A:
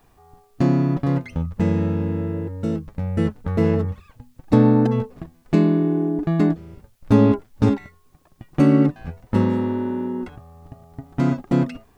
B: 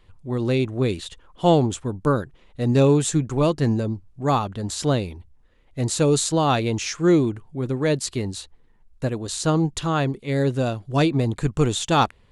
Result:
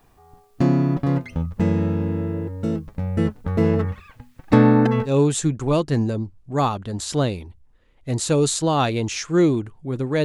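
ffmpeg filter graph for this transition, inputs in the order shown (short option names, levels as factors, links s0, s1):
-filter_complex "[0:a]asettb=1/sr,asplit=3[s0][s1][s2];[s0]atrim=end=3.794[s3];[s1]atrim=start=3.79:end=5.18,asetpts=PTS-STARTPTS,afade=t=in:d=0.004:c=qsin,afade=t=out:st=1.386:d=0.004:c=qsin,equalizer=f=1900:w=0.75:g=9.5[s4];[s2]atrim=start=5.176[s5];[s3][s4]acrossfade=d=0.004:c1=hsin:c2=qsin[s6];[s6][s5]acrossfade=d=0.004:c1=qsin:c2=hsin,apad=whole_dur=10.24,atrim=end=10.24,atrim=end=5.18,asetpts=PTS-STARTPTS[s7];[1:a]atrim=start=2.74:end=7.94,asetpts=PTS-STARTPTS[s8];[s7][s8]acrossfade=d=0.14:c1=tri:c2=tri"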